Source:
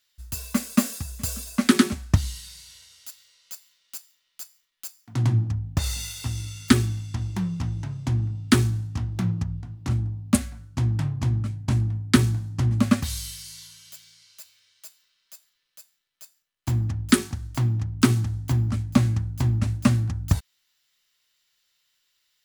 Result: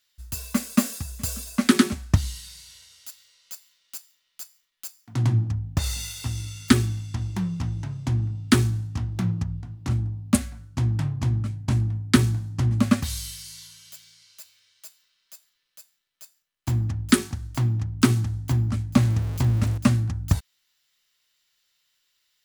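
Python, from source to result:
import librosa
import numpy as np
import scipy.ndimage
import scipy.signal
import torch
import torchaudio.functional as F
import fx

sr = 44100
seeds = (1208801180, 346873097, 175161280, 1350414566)

y = fx.zero_step(x, sr, step_db=-30.5, at=(18.97, 19.78))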